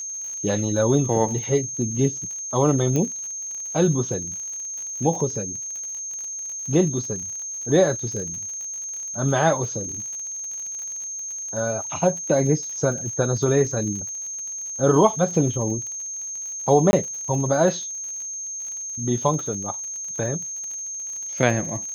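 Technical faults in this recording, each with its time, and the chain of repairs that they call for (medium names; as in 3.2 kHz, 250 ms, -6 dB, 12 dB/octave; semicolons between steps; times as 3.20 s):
crackle 53 per s -32 dBFS
whine 6.4 kHz -29 dBFS
2.96 s: pop -12 dBFS
16.91–16.93 s: dropout 21 ms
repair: de-click; band-stop 6.4 kHz, Q 30; interpolate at 16.91 s, 21 ms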